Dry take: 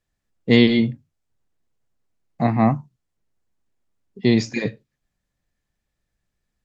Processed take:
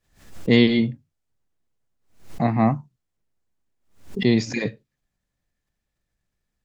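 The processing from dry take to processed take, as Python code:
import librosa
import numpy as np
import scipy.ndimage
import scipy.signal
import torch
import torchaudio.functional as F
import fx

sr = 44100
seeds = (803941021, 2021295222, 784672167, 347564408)

y = fx.pre_swell(x, sr, db_per_s=120.0)
y = F.gain(torch.from_numpy(y), -2.0).numpy()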